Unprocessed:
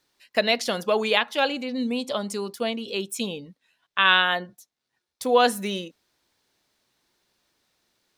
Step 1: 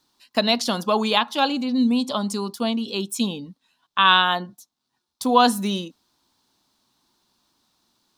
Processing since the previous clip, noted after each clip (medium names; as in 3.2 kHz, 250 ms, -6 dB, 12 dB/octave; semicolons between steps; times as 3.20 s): graphic EQ 250/500/1000/2000/4000 Hz +7/-8/+8/-10/+4 dB; trim +2.5 dB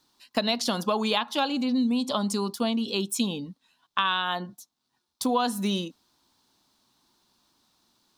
compression 5:1, threshold -22 dBFS, peak gain reduction 11.5 dB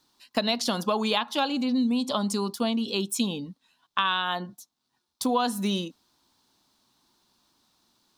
no audible change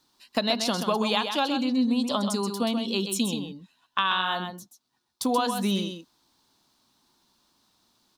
delay 130 ms -7 dB